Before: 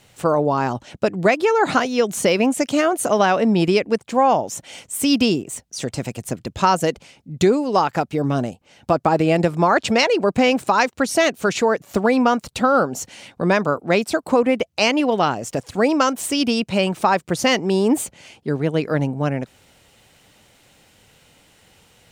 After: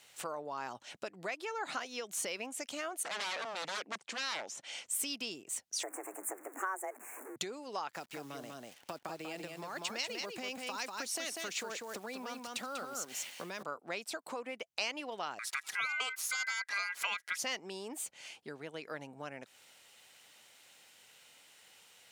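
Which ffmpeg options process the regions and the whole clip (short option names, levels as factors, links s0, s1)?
-filter_complex "[0:a]asettb=1/sr,asplit=3[s0][s1][s2];[s0]atrim=end=3.034[s3];[s1]atrim=start=3.03:end=4.86,asetpts=PTS-STARTPTS,afade=t=in:d=0.004:c=qsin,afade=t=out:st=1.826:d=0.004:c=qsin,deesser=0.6,aeval=exprs='0.0944*(abs(mod(val(0)/0.0944+3,4)-2)-1)':c=same,highpass=140,lowpass=6900[s4];[s2]atrim=start=4.856[s5];[s3][s4]acrossfade=d=0.004:c1=hsin:c2=qsin[s6];[s6][s5]acrossfade=d=0.004:c1=qsin:c2=hsin,asettb=1/sr,asplit=3[s7][s8][s9];[s7]atrim=end=5.834[s10];[s8]atrim=start=5.83:end=7.36,asetpts=PTS-STARTPTS,afade=t=in:d=0.004:c=qsin,afade=t=out:st=1.526:d=0.004:c=qsin,aeval=exprs='val(0)+0.5*0.0282*sgn(val(0))':c=same,afreqshift=190,asuperstop=centerf=4000:order=8:qfactor=0.74[s11];[s9]atrim=start=7.356[s12];[s10][s11]acrossfade=d=0.004:c1=hsin:c2=qsin[s13];[s13][s12]acrossfade=d=0.004:c1=qsin:c2=hsin,asettb=1/sr,asplit=3[s14][s15][s16];[s14]atrim=end=7.904[s17];[s15]atrim=start=7.9:end=13.63,asetpts=PTS-STARTPTS,afade=t=in:d=0.004:c=qsin,afade=t=out:st=5.726:d=0.004:c=qsin,acrossover=split=370|3000[s18][s19][s20];[s19]acompressor=threshold=0.0794:ratio=6:attack=3.2:release=140:knee=2.83:detection=peak[s21];[s18][s21][s20]amix=inputs=3:normalize=0,acrusher=bits=8:dc=4:mix=0:aa=0.000001,aecho=1:1:193:0.562,atrim=end_sample=252693[s22];[s16]atrim=start=13.626[s23];[s17][s22]acrossfade=d=0.004:c1=hsin:c2=qsin[s24];[s24][s23]acrossfade=d=0.004:c1=qsin:c2=hsin,asettb=1/sr,asplit=3[s25][s26][s27];[s25]atrim=end=15.394[s28];[s26]atrim=start=15.39:end=17.38,asetpts=PTS-STARTPTS,afade=t=in:d=0.004:c=qsin,afade=t=out:st=1.986:d=0.004:c=qsin,acompressor=mode=upward:threshold=0.0891:ratio=2.5:attack=3.2:release=140:knee=2.83:detection=peak,aeval=exprs='val(0)*sin(2*PI*1800*n/s)':c=same[s29];[s27]atrim=start=17.376[s30];[s28][s29]acrossfade=d=0.004:c1=hsin:c2=qsin[s31];[s31][s30]acrossfade=d=0.004:c1=qsin:c2=hsin,acompressor=threshold=0.0355:ratio=3,highpass=f=1400:p=1,volume=0.631"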